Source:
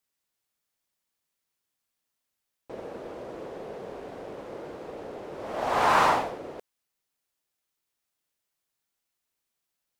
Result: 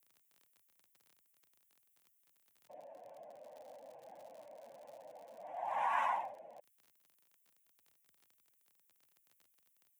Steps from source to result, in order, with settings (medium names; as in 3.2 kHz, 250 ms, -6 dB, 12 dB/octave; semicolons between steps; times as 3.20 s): spectral contrast enhancement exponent 1.8; pre-emphasis filter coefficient 0.9; static phaser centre 1.2 kHz, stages 6; crackle 35 per s -57 dBFS, from 3.39 s 140 per s, from 5.42 s 32 per s; frequency shift +83 Hz; trim +7 dB